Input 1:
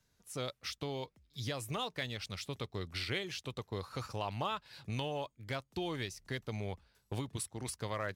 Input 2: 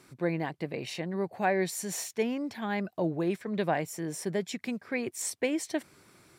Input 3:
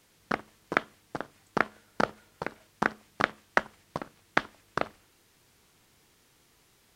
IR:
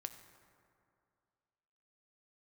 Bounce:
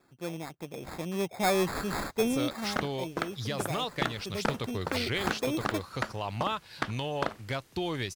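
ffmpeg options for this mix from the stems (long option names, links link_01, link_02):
-filter_complex "[0:a]adelay=2000,volume=-5.5dB[link_01];[1:a]acrusher=samples=15:mix=1:aa=0.000001,afade=type=out:start_time=2.54:duration=0.23:silence=0.237137,afade=type=in:start_time=4.18:duration=0.64:silence=0.398107[link_02];[2:a]adelay=2450,volume=-9dB[link_03];[link_01][link_03]amix=inputs=2:normalize=0,alimiter=limit=-15.5dB:level=0:latency=1:release=409,volume=0dB[link_04];[link_02][link_04]amix=inputs=2:normalize=0,dynaudnorm=framelen=710:gausssize=3:maxgain=11.5dB,asoftclip=type=tanh:threshold=-17.5dB"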